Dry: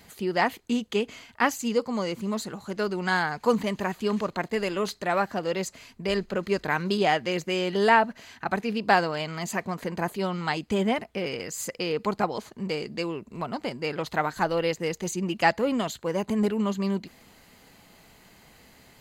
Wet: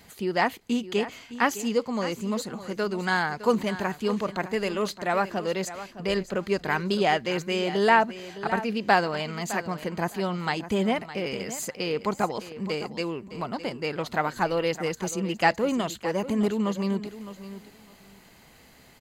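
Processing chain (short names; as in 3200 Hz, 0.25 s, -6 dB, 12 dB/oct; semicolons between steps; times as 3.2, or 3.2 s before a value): feedback echo 0.611 s, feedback 17%, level -13.5 dB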